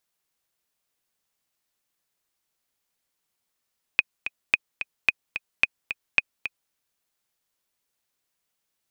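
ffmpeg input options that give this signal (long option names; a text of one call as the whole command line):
ffmpeg -f lavfi -i "aevalsrc='pow(10,(-4-11*gte(mod(t,2*60/219),60/219))/20)*sin(2*PI*2500*mod(t,60/219))*exp(-6.91*mod(t,60/219)/0.03)':duration=2.73:sample_rate=44100" out.wav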